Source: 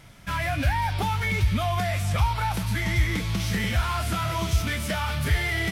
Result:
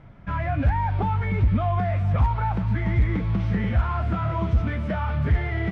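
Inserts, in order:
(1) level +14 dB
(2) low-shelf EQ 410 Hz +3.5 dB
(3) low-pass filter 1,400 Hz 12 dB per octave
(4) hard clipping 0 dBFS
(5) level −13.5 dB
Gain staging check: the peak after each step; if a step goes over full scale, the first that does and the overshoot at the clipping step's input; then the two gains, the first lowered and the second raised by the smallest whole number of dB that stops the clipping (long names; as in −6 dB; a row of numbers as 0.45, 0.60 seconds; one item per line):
+3.0, +5.5, +5.0, 0.0, −13.5 dBFS
step 1, 5.0 dB
step 1 +9 dB, step 5 −8.5 dB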